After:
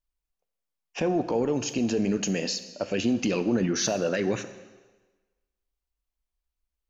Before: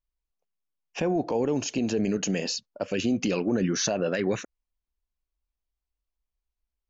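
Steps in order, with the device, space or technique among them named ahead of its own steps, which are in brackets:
saturated reverb return (on a send at −9 dB: convolution reverb RT60 1.3 s, pre-delay 3 ms + soft clipping −21.5 dBFS, distortion −16 dB)

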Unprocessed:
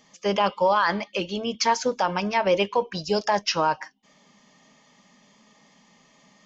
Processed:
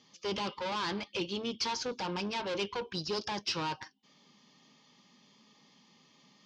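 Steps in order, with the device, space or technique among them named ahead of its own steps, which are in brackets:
guitar amplifier (tube saturation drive 27 dB, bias 0.55; bass and treble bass +4 dB, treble +15 dB; loudspeaker in its box 83–4,400 Hz, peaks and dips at 190 Hz −4 dB, 350 Hz +5 dB, 640 Hz −8 dB, 1,900 Hz −5 dB)
level −4 dB

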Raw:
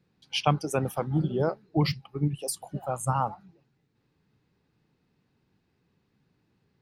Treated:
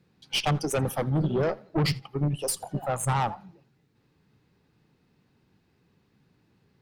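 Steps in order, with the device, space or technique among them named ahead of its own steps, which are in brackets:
rockabilly slapback (tube saturation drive 26 dB, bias 0.35; tape delay 84 ms, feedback 35%, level −21.5 dB, low-pass 5,300 Hz)
level +6 dB

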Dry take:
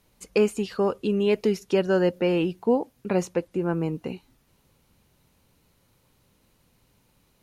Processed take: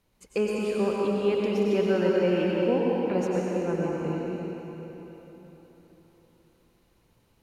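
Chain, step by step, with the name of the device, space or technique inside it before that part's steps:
swimming-pool hall (convolution reverb RT60 4.0 s, pre-delay 87 ms, DRR −4 dB; high-shelf EQ 4,800 Hz −5 dB)
level −6 dB

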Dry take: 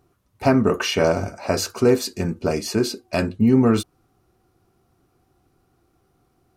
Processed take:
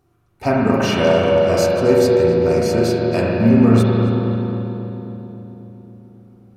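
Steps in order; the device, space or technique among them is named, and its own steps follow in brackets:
dub delay into a spring reverb (feedback echo with a low-pass in the loop 270 ms, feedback 69%, low-pass 1,200 Hz, level −5 dB; spring reverb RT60 2.7 s, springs 35/44 ms, chirp 45 ms, DRR −4 dB)
level −2 dB

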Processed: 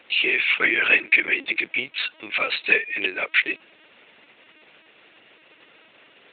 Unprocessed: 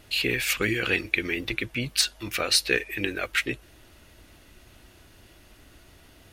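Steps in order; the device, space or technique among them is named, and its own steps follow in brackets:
0:00.53–0:01.34: dynamic equaliser 1,500 Hz, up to +6 dB, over −40 dBFS, Q 2
talking toy (linear-prediction vocoder at 8 kHz; high-pass filter 380 Hz 12 dB per octave; parametric band 2,400 Hz +7 dB 0.59 octaves)
level +2 dB

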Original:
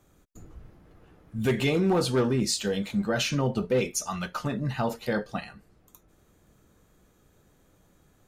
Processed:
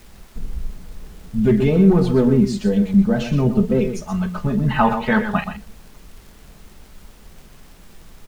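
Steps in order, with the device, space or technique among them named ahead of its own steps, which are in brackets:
spectral tilt −4 dB per octave
comb filter 4.7 ms, depth 64%
0:04.68–0:05.44: flat-topped bell 1,700 Hz +15 dB 2.5 octaves
single-tap delay 124 ms −9.5 dB
vinyl LP (tape wow and flutter; surface crackle; pink noise bed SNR 30 dB)

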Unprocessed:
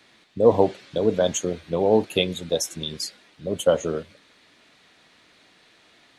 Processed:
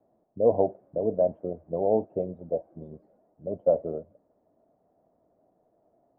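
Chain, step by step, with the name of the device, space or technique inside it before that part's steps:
under water (low-pass filter 750 Hz 24 dB per octave; parametric band 650 Hz +10 dB 0.51 octaves)
level −8 dB

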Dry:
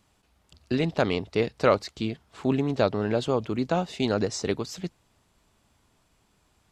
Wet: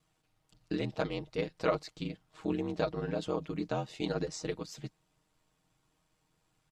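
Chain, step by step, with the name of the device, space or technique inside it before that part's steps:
ring-modulated robot voice (ring modulation 43 Hz; comb filter 6.4 ms, depth 70%)
level −7.5 dB

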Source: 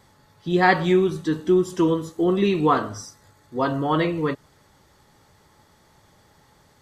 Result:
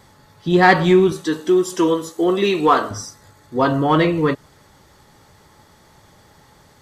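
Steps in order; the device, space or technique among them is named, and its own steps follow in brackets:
0:01.12–0:02.91: bass and treble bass −13 dB, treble +4 dB
parallel distortion (in parallel at −8.5 dB: hard clipping −18 dBFS, distortion −10 dB)
on the sum: level +3.5 dB

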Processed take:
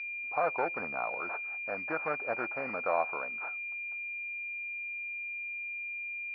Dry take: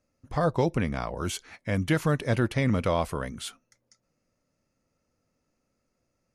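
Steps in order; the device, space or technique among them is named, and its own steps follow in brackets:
toy sound module (linearly interpolated sample-rate reduction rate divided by 6×; switching amplifier with a slow clock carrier 2,400 Hz; loudspeaker in its box 730–4,400 Hz, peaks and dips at 750 Hz +6 dB, 1,400 Hz +8 dB, 3,200 Hz −8 dB)
0:00.80–0:01.20: low-shelf EQ 150 Hz +9.5 dB

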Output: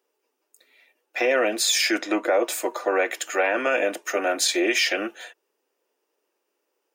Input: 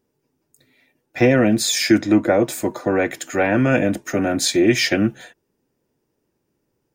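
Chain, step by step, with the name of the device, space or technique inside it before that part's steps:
laptop speaker (high-pass filter 420 Hz 24 dB per octave; parametric band 1,200 Hz +4 dB 0.27 octaves; parametric band 2,800 Hz +5.5 dB 0.43 octaves; brickwall limiter −11.5 dBFS, peak gain reduction 6.5 dB)

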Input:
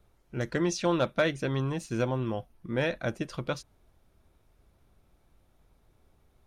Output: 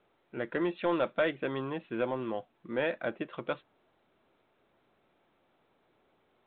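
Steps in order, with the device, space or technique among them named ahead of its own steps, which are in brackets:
telephone (band-pass filter 280–3,100 Hz; soft clipping −18.5 dBFS, distortion −18 dB; mu-law 64 kbit/s 8,000 Hz)

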